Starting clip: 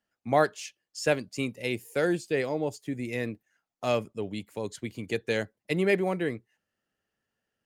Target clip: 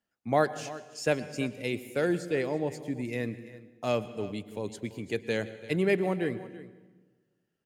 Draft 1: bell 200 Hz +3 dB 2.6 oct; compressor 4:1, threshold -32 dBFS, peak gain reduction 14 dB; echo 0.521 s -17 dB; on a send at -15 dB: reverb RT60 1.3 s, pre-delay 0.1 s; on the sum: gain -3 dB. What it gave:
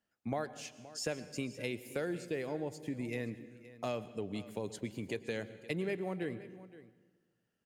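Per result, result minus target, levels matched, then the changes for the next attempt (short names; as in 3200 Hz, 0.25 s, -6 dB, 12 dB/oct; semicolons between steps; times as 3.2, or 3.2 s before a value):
compressor: peak gain reduction +14 dB; echo 0.185 s late
remove: compressor 4:1, threshold -32 dBFS, peak gain reduction 14 dB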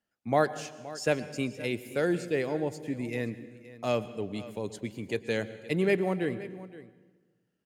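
echo 0.185 s late
change: echo 0.336 s -17 dB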